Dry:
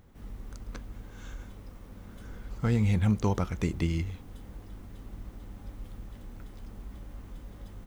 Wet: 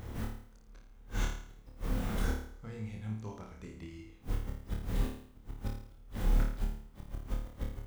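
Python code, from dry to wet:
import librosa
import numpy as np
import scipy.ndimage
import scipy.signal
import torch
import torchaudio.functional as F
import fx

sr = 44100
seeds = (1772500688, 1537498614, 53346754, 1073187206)

y = fx.hum_notches(x, sr, base_hz=60, count=5)
y = fx.gate_flip(y, sr, shuts_db=-35.0, range_db=-30)
y = fx.room_flutter(y, sr, wall_m=4.7, rt60_s=0.59)
y = y * librosa.db_to_amplitude(11.5)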